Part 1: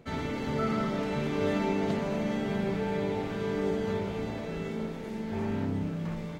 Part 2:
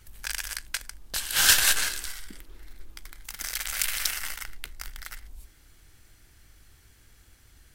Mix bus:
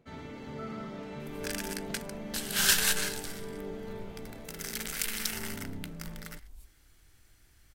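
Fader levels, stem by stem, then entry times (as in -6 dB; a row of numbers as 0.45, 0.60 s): -10.5, -5.5 dB; 0.00, 1.20 s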